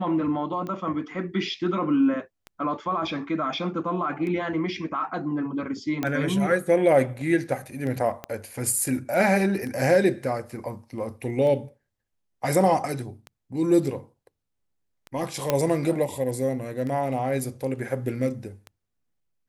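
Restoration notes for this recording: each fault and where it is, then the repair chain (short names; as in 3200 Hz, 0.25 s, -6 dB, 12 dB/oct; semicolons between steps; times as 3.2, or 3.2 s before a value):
tick 33 1/3 rpm -23 dBFS
6.03 pop -13 dBFS
8.24 pop -18 dBFS
15.5 pop -7 dBFS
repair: de-click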